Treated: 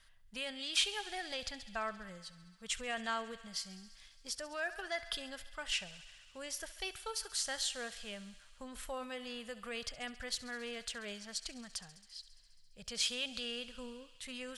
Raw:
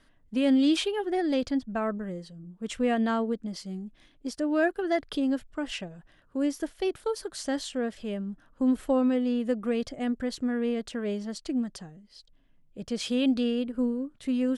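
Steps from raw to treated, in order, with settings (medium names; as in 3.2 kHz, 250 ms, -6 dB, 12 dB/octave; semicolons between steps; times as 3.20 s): on a send: thinning echo 68 ms, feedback 83%, high-pass 520 Hz, level -17.5 dB; on the sum: peak limiter -20.5 dBFS, peak gain reduction 6.5 dB; amplifier tone stack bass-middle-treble 10-0-10; trim +3.5 dB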